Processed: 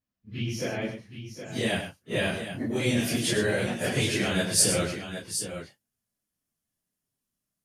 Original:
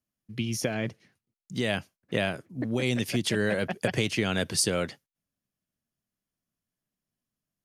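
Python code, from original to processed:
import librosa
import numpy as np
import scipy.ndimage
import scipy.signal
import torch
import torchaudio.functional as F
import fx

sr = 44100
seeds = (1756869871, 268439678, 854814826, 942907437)

y = fx.phase_scramble(x, sr, seeds[0], window_ms=100)
y = fx.peak_eq(y, sr, hz=10000.0, db=fx.steps((0.0, -10.5), (0.82, 7.0)), octaves=1.2)
y = fx.echo_multitap(y, sr, ms=(101, 768), db=(-9.0, -9.5))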